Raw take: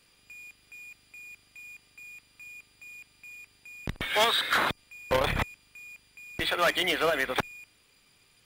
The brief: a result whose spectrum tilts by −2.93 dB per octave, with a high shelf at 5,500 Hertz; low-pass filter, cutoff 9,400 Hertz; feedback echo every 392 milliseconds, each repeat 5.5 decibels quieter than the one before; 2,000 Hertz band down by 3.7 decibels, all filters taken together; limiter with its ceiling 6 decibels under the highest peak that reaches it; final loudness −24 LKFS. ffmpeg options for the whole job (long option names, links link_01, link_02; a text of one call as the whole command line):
ffmpeg -i in.wav -af "lowpass=9400,equalizer=frequency=2000:width_type=o:gain=-5.5,highshelf=frequency=5500:gain=6,alimiter=limit=-20.5dB:level=0:latency=1,aecho=1:1:392|784|1176|1568|1960|2352|2744:0.531|0.281|0.149|0.079|0.0419|0.0222|0.0118,volume=6.5dB" out.wav